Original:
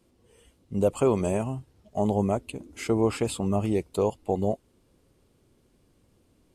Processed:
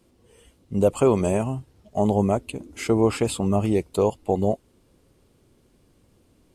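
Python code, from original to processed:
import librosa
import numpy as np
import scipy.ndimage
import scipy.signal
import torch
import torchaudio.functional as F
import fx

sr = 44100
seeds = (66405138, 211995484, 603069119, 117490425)

y = F.gain(torch.from_numpy(x), 4.0).numpy()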